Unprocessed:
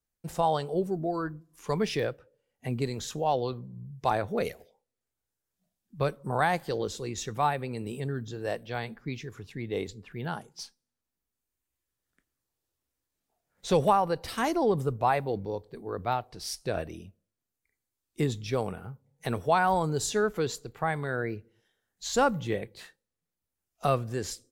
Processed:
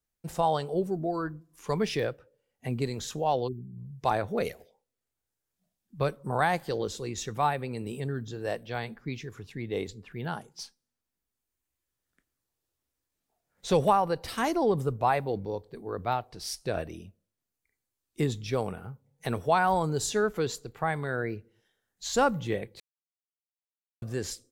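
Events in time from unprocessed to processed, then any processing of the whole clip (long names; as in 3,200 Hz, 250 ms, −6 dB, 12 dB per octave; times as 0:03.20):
0:03.48–0:03.78: time-frequency box erased 450–6,900 Hz
0:22.80–0:24.02: silence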